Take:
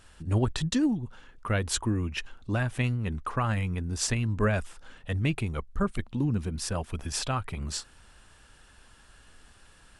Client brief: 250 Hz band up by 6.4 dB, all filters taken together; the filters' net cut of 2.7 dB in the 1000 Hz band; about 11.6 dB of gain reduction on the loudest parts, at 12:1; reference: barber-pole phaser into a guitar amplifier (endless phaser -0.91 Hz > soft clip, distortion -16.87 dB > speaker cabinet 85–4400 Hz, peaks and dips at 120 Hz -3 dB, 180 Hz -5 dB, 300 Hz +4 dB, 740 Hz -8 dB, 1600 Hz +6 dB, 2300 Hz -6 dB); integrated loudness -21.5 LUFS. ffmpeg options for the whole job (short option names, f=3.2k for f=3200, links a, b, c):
-filter_complex "[0:a]equalizer=f=250:t=o:g=7,equalizer=f=1k:t=o:g=-3,acompressor=threshold=-28dB:ratio=12,asplit=2[a][b];[b]afreqshift=-0.91[c];[a][c]amix=inputs=2:normalize=1,asoftclip=threshold=-29dB,highpass=85,equalizer=f=120:t=q:w=4:g=-3,equalizer=f=180:t=q:w=4:g=-5,equalizer=f=300:t=q:w=4:g=4,equalizer=f=740:t=q:w=4:g=-8,equalizer=f=1.6k:t=q:w=4:g=6,equalizer=f=2.3k:t=q:w=4:g=-6,lowpass=f=4.4k:w=0.5412,lowpass=f=4.4k:w=1.3066,volume=19.5dB"